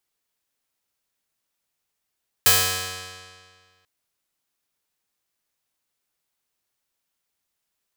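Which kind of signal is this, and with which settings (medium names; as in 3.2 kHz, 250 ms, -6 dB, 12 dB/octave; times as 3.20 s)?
plucked string F#2, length 1.39 s, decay 1.85 s, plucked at 0.31, bright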